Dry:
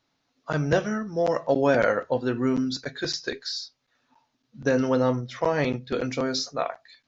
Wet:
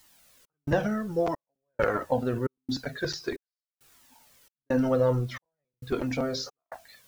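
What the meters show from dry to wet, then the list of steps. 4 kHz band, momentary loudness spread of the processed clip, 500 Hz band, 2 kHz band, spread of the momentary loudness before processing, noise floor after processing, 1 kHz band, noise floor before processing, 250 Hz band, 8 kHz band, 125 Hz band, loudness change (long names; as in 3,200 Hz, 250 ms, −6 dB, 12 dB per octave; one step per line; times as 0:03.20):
−7.0 dB, 16 LU, −4.5 dB, −6.0 dB, 9 LU, below −85 dBFS, −5.0 dB, −75 dBFS, −4.0 dB, can't be measured, −1.5 dB, −3.5 dB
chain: high-shelf EQ 2,100 Hz −11.5 dB
transient designer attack +3 dB, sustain +7 dB
in parallel at −7 dB: bit-depth reduction 8 bits, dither triangular
on the sum: gate pattern "xx.xxx..x" 67 BPM −60 dB
flanger whose copies keep moving one way falling 1.5 Hz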